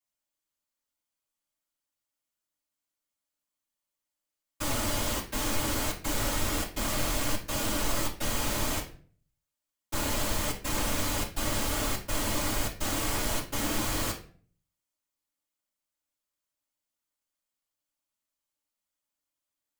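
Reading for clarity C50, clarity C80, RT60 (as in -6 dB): 9.5 dB, 15.0 dB, 0.45 s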